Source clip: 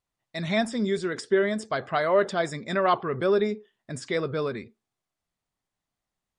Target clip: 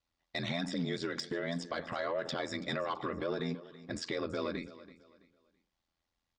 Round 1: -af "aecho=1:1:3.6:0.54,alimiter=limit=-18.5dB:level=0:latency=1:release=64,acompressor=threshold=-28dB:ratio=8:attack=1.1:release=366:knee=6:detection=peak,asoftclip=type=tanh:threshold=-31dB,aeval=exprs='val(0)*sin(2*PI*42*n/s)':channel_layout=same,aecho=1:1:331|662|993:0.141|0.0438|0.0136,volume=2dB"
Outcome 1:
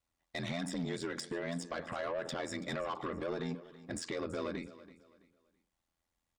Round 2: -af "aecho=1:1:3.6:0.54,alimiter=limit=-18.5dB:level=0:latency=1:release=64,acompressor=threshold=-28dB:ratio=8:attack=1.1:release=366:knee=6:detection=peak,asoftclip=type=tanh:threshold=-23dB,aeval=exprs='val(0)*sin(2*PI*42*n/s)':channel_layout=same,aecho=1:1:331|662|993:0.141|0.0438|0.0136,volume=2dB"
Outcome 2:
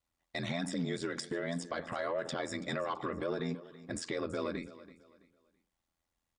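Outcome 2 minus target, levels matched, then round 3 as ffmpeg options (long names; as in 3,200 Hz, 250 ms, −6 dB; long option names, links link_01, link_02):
4,000 Hz band −3.0 dB
-af "aecho=1:1:3.6:0.54,alimiter=limit=-18.5dB:level=0:latency=1:release=64,acompressor=threshold=-28dB:ratio=8:attack=1.1:release=366:knee=6:detection=peak,lowpass=frequency=4900:width_type=q:width=1.5,asoftclip=type=tanh:threshold=-23dB,aeval=exprs='val(0)*sin(2*PI*42*n/s)':channel_layout=same,aecho=1:1:331|662|993:0.141|0.0438|0.0136,volume=2dB"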